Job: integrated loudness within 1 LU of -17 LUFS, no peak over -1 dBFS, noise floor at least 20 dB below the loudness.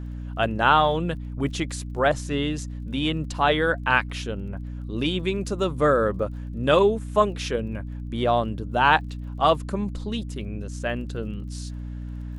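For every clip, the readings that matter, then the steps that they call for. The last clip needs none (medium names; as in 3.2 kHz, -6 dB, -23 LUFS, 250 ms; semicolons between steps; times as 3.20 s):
tick rate 27 per s; hum 60 Hz; highest harmonic 300 Hz; hum level -31 dBFS; loudness -24.5 LUFS; peak level -3.5 dBFS; loudness target -17.0 LUFS
-> de-click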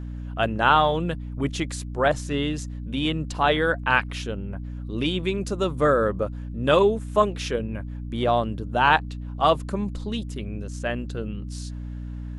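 tick rate 0.081 per s; hum 60 Hz; highest harmonic 300 Hz; hum level -31 dBFS
-> hum notches 60/120/180/240/300 Hz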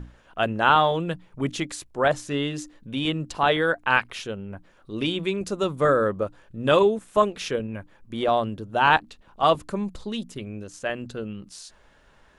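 hum not found; loudness -24.5 LUFS; peak level -3.5 dBFS; loudness target -17.0 LUFS
-> trim +7.5 dB; peak limiter -1 dBFS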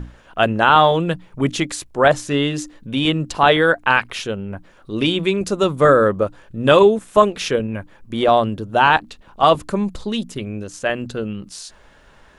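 loudness -17.5 LUFS; peak level -1.0 dBFS; noise floor -50 dBFS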